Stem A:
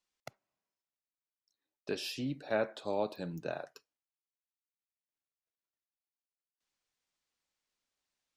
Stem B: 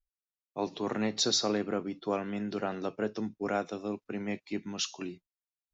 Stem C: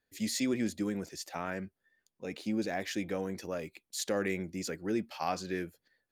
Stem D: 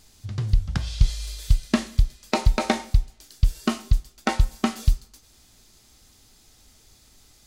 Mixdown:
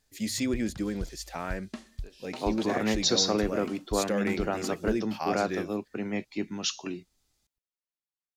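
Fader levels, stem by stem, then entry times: -16.0 dB, +3.0 dB, +2.0 dB, -19.0 dB; 0.15 s, 1.85 s, 0.00 s, 0.00 s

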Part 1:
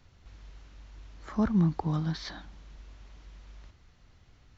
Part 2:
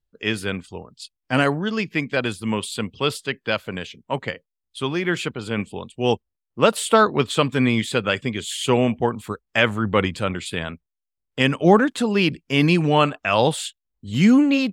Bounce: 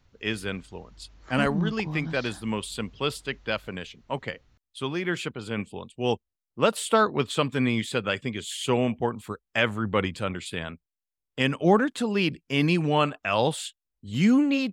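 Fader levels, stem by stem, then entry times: -4.0 dB, -5.5 dB; 0.00 s, 0.00 s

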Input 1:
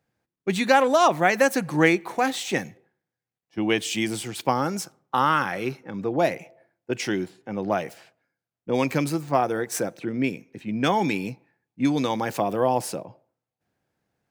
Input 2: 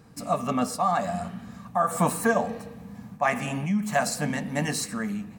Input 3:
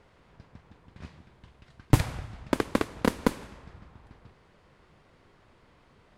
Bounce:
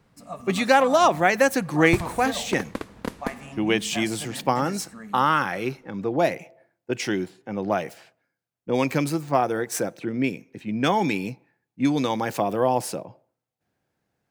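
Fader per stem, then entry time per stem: +0.5 dB, -11.0 dB, -6.0 dB; 0.00 s, 0.00 s, 0.00 s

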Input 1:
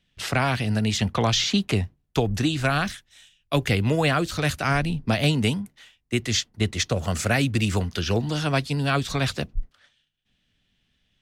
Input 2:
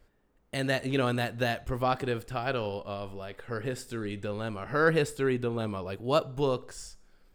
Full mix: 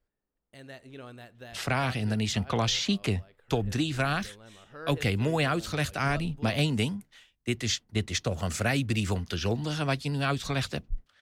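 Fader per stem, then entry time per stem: -5.0 dB, -17.5 dB; 1.35 s, 0.00 s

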